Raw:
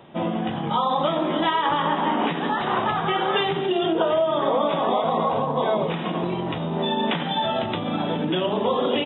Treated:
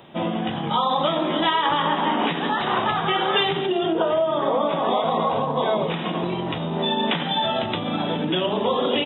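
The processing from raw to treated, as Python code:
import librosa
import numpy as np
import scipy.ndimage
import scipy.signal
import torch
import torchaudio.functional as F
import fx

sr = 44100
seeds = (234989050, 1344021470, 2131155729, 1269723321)

y = fx.high_shelf(x, sr, hz=3600.0, db=fx.steps((0.0, 10.5), (3.66, -3.0), (4.84, 8.0)))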